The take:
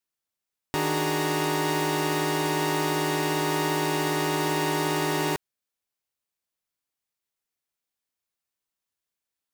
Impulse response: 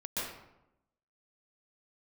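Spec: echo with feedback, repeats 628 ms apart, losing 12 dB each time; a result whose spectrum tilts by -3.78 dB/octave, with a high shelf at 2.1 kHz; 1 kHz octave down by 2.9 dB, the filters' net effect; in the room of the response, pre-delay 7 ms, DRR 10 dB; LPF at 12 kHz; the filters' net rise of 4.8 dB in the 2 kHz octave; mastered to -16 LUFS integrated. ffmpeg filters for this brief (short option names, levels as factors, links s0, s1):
-filter_complex "[0:a]lowpass=12000,equalizer=f=1000:t=o:g=-5.5,equalizer=f=2000:t=o:g=3.5,highshelf=f=2100:g=7,aecho=1:1:628|1256|1884:0.251|0.0628|0.0157,asplit=2[s0][s1];[1:a]atrim=start_sample=2205,adelay=7[s2];[s1][s2]afir=irnorm=-1:irlink=0,volume=0.188[s3];[s0][s3]amix=inputs=2:normalize=0,volume=2.24"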